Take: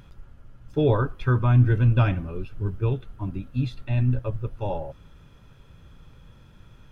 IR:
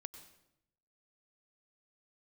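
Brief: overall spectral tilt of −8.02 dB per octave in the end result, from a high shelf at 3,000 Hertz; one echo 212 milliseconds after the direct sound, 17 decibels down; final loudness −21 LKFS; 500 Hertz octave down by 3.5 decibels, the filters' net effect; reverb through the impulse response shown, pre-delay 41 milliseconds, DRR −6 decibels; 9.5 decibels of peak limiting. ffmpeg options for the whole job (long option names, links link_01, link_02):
-filter_complex "[0:a]equalizer=frequency=500:width_type=o:gain=-4,highshelf=frequency=3000:gain=-7.5,alimiter=limit=-17.5dB:level=0:latency=1,aecho=1:1:212:0.141,asplit=2[link_01][link_02];[1:a]atrim=start_sample=2205,adelay=41[link_03];[link_02][link_03]afir=irnorm=-1:irlink=0,volume=10.5dB[link_04];[link_01][link_04]amix=inputs=2:normalize=0"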